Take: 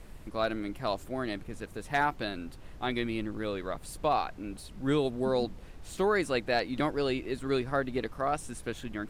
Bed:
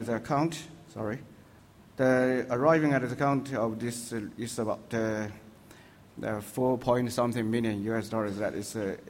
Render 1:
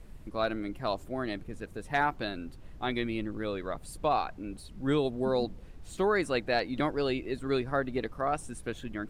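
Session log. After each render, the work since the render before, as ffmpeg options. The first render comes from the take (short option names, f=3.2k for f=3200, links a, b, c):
-af "afftdn=nr=6:nf=-48"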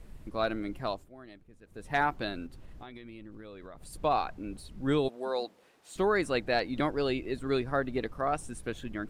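-filter_complex "[0:a]asettb=1/sr,asplit=3[a][b][c];[a]atrim=end=2.464[d];[b]atrim=start=2.46:end=3.93,asetpts=PTS-STARTPTS,afade=t=in:d=0.004:c=qsin,afade=t=out:st=1.466:d=0.004:c=qsin,acompressor=threshold=-42dB:ratio=12:attack=3.2:release=140:knee=1:detection=peak[e];[c]atrim=start=3.926[f];[d][e]acrossfade=d=0.004:c1=hsin:c2=qsin[g];[g][f]acrossfade=d=0.004:c1=qsin:c2=hsin,asettb=1/sr,asplit=3[h][i][j];[h]atrim=end=5.084[k];[i]atrim=start=5.08:end=5.96,asetpts=PTS-STARTPTS,afade=t=in:d=0.004:c=qsin,afade=t=out:st=0.876:d=0.004:c=qsin,highpass=520[l];[j]atrim=start=5.956[m];[k][l]acrossfade=d=0.004:c1=hsin:c2=qsin[n];[n][m]acrossfade=d=0.004:c1=qsin:c2=hsin,asplit=3[o][p][q];[o]atrim=end=1.1,asetpts=PTS-STARTPTS,afade=t=out:st=0.82:d=0.28:silence=0.158489[r];[p]atrim=start=1.1:end=1.65,asetpts=PTS-STARTPTS,volume=-16dB[s];[q]atrim=start=1.65,asetpts=PTS-STARTPTS,afade=t=in:d=0.28:silence=0.158489[t];[r][s][t]concat=n=3:v=0:a=1"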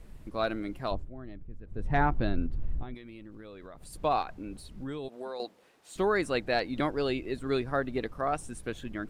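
-filter_complex "[0:a]asettb=1/sr,asplit=3[a][b][c];[a]atrim=end=0.914[d];[b]atrim=start=0.91:end=2.95,asetpts=PTS-STARTPTS,afade=t=in:d=0.004:c=qsin,afade=t=out:st=2.036:d=0.004:c=qsin,aemphasis=mode=reproduction:type=riaa[e];[c]atrim=start=2.946[f];[d][e]acrossfade=d=0.004:c1=hsin:c2=qsin[g];[g][f]acrossfade=d=0.004:c1=qsin:c2=hsin,asettb=1/sr,asplit=3[h][i][j];[h]atrim=end=4.224[k];[i]atrim=start=4.22:end=5.4,asetpts=PTS-STARTPTS,afade=t=in:d=0.004:c=qsin,afade=t=out:st=1.176:d=0.004:c=qsin,acompressor=threshold=-34dB:ratio=6:attack=3.2:release=140:knee=1:detection=peak[l];[j]atrim=start=5.396[m];[k][l]acrossfade=d=0.004:c1=hsin:c2=qsin[n];[n][m]acrossfade=d=0.004:c1=qsin:c2=hsin"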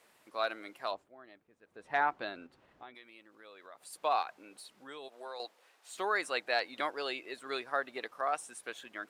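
-af "highpass=720"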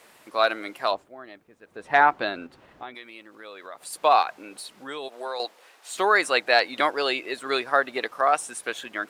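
-af "volume=12dB"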